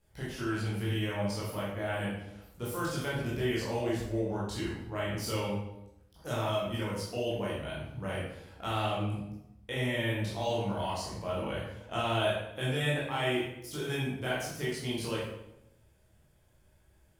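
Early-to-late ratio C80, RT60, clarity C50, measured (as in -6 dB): 4.5 dB, 0.85 s, 0.5 dB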